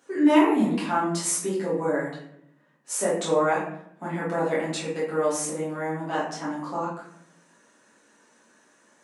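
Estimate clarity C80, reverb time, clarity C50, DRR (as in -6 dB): 6.5 dB, 0.70 s, 2.5 dB, -9.0 dB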